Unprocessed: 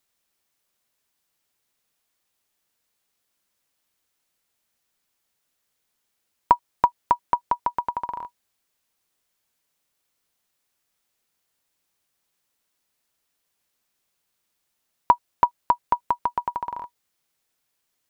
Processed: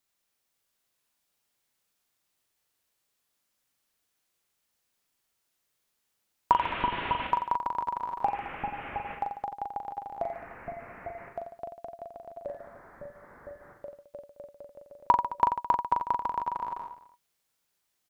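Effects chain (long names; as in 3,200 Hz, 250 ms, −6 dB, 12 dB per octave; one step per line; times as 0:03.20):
0:06.52–0:07.27: linear delta modulator 16 kbit/s, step −24.5 dBFS
delay with pitch and tempo change per echo 504 ms, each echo −3 semitones, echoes 3, each echo −6 dB
reverse bouncing-ball delay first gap 40 ms, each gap 1.2×, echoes 5
level −5.5 dB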